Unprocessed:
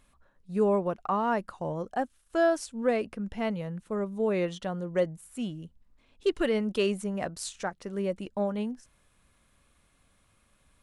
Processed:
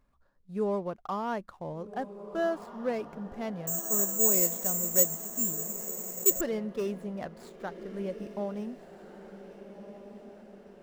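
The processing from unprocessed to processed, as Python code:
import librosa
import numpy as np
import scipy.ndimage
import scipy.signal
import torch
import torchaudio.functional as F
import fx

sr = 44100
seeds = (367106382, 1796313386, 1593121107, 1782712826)

y = scipy.ndimage.median_filter(x, 15, mode='constant')
y = fx.echo_diffused(y, sr, ms=1567, feedback_pct=52, wet_db=-11.5)
y = fx.resample_bad(y, sr, factor=6, down='none', up='zero_stuff', at=(3.67, 6.41))
y = y * 10.0 ** (-5.0 / 20.0)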